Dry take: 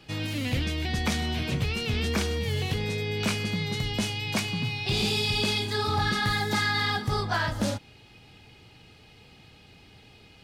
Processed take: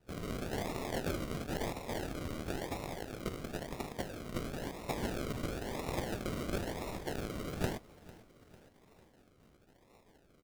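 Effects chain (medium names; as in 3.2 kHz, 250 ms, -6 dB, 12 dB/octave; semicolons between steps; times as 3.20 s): rattle on loud lows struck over -30 dBFS, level -24 dBFS; spectral gate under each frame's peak -25 dB weak; 1.74–4.15 s: low-pass 3.3 kHz 6 dB/octave; decimation with a swept rate 40×, swing 60% 0.98 Hz; feedback delay 449 ms, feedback 54%, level -20 dB; trim +5.5 dB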